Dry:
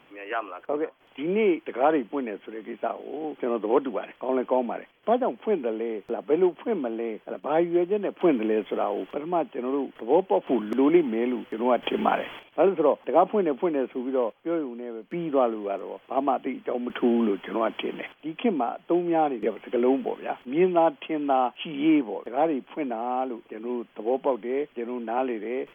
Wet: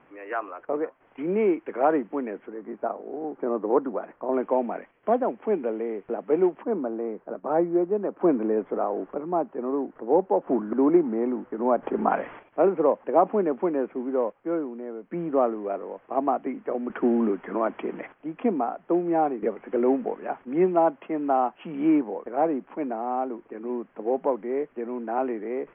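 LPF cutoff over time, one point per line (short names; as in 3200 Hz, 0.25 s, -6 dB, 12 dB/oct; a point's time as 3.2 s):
LPF 24 dB/oct
2000 Hz
from 2.48 s 1500 Hz
from 4.34 s 2100 Hz
from 6.63 s 1500 Hz
from 12.11 s 1900 Hz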